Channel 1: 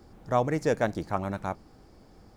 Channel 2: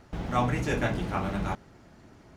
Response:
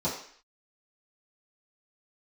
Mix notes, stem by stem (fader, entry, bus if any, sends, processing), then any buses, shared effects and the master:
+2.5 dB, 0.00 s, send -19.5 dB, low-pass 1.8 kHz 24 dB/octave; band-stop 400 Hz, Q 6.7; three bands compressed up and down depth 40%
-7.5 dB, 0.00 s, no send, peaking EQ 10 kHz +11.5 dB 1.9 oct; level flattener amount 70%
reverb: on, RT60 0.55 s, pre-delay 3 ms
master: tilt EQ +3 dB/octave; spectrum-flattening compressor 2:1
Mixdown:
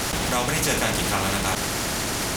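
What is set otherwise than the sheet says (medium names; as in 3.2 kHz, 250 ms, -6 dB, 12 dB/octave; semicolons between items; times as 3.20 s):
stem 2 -7.5 dB -> +1.0 dB; master: missing tilt EQ +3 dB/octave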